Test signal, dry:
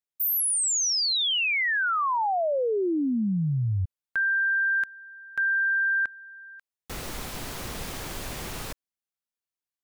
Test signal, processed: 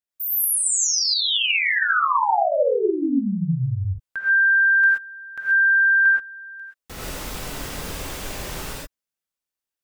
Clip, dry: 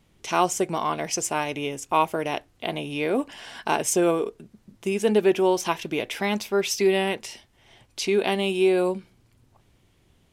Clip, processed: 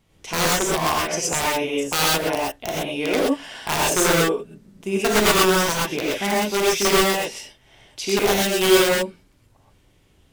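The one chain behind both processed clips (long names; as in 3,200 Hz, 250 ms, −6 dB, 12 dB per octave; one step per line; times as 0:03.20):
dynamic equaliser 900 Hz, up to +3 dB, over −36 dBFS, Q 1.3
wrap-around overflow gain 13.5 dB
reverb whose tail is shaped and stops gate 150 ms rising, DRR −4.5 dB
level −2 dB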